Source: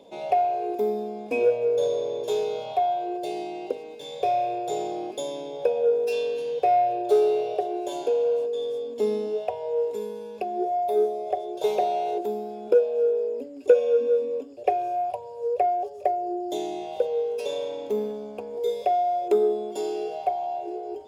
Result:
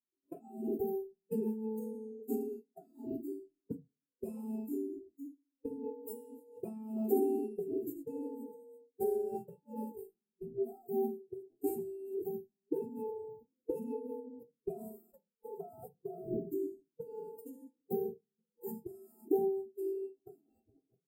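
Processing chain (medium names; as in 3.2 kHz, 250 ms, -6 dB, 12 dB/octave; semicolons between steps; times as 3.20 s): gate -29 dBFS, range -32 dB; inverse Chebyshev band-stop 590–6400 Hz, stop band 40 dB; formant-preserving pitch shift +10.5 st; reverberation RT60 0.30 s, pre-delay 3 ms, DRR 8.5 dB; spectral noise reduction 16 dB; trim +8 dB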